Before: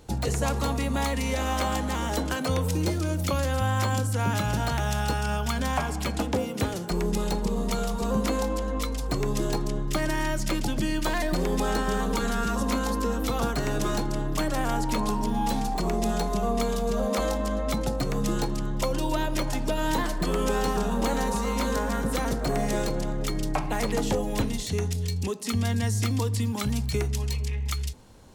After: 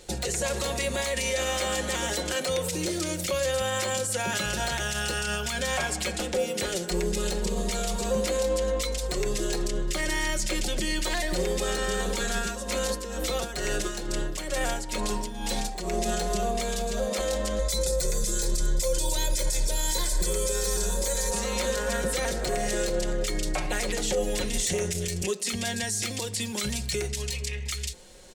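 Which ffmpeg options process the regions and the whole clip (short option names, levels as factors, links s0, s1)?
-filter_complex "[0:a]asettb=1/sr,asplit=3[s0][s1][s2];[s0]atrim=end=12.374[s3];[s1]atrim=start=12.37:end=15.99,asetpts=PTS-STARTPTS,afade=t=in:d=0.004:c=qsin,afade=t=out:st=3.616:d=0.004:c=qsin,tremolo=f=2.2:d=0.72,acompressor=mode=upward:threshold=0.0316:ratio=2.5:attack=3.2:release=140:knee=2.83:detection=peak[s4];[s2]atrim=start=15.986[s5];[s3][s4]acrossfade=d=0.004:c1=hsin:c2=qsin[s6];[s6][s5]acrossfade=d=0.004:c1=qsin:c2=hsin,asettb=1/sr,asplit=3[s7][s8][s9];[s7]atrim=end=17.594[s10];[s8]atrim=start=17.59:end=21.31,asetpts=PTS-STARTPTS,afade=t=in:d=0.004:c=qsin,afade=t=out:st=3.716:d=0.004:c=qsin,bass=f=250:g=6,treble=f=4000:g=14,bandreject=f=2900:w=6.8,aecho=1:1:2:0.59,atrim=end_sample=164052[s11];[s9]atrim=start=21.306[s12];[s10][s11]acrossfade=d=0.004:c1=hsin:c2=qsin[s13];[s13][s12]acrossfade=d=0.004:c1=qsin:c2=hsin,asettb=1/sr,asplit=3[s14][s15][s16];[s14]atrim=end=24.544[s17];[s15]atrim=start=24.54:end=25.26,asetpts=PTS-STARTPTS,afade=t=in:d=0.004:c=qsin,afade=t=out:st=0.716:d=0.004:c=qsin,equalizer=f=4100:t=o:w=0.6:g=-8,aeval=exprs='0.15*sin(PI/2*1.58*val(0)/0.15)':c=same[s18];[s16]atrim=start=25.256[s19];[s17][s18]acrossfade=d=0.004:c1=hsin:c2=qsin[s20];[s20][s19]acrossfade=d=0.004:c1=qsin:c2=hsin,equalizer=f=125:t=o:w=1:g=-8,equalizer=f=250:t=o:w=1:g=-5,equalizer=f=500:t=o:w=1:g=7,equalizer=f=1000:t=o:w=1:g=-7,equalizer=f=2000:t=o:w=1:g=6,equalizer=f=4000:t=o:w=1:g=5,equalizer=f=8000:t=o:w=1:g=9,alimiter=limit=0.106:level=0:latency=1:release=43,aecho=1:1:5.5:0.57"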